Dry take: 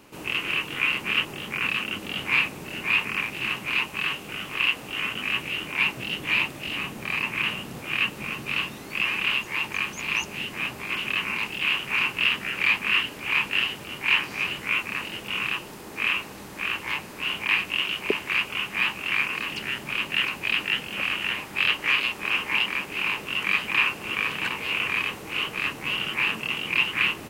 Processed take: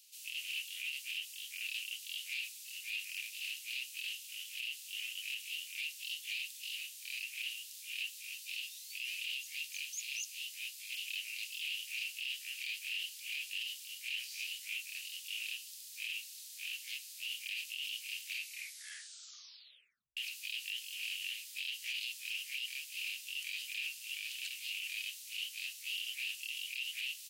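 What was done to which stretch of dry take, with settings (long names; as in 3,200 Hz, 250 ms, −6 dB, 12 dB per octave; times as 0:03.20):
0:08.38–0:12.09: high-pass filter 1,300 Hz
0:18.33: tape stop 1.84 s
whole clip: inverse Chebyshev high-pass filter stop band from 850 Hz, stop band 70 dB; brickwall limiter −29.5 dBFS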